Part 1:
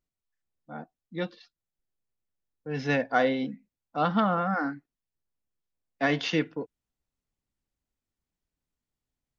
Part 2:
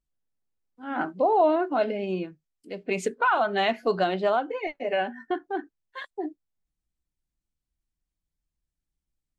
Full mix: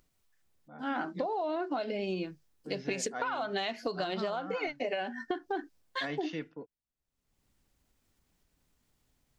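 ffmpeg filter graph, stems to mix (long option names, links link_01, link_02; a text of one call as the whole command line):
ffmpeg -i stem1.wav -i stem2.wav -filter_complex "[0:a]acompressor=mode=upward:threshold=-42dB:ratio=2.5,volume=-10.5dB[link_01];[1:a]agate=range=-33dB:threshold=-52dB:ratio=3:detection=peak,equalizer=frequency=5200:width_type=o:width=1.1:gain=14,acompressor=threshold=-23dB:ratio=6,volume=2.5dB[link_02];[link_01][link_02]amix=inputs=2:normalize=0,acompressor=threshold=-30dB:ratio=10" out.wav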